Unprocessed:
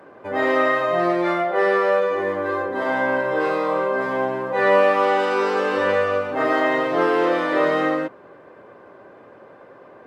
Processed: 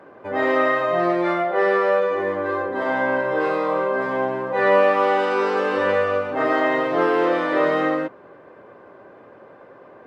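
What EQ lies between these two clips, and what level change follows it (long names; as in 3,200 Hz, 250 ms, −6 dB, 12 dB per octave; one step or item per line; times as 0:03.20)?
high-shelf EQ 5,600 Hz −7.5 dB
0.0 dB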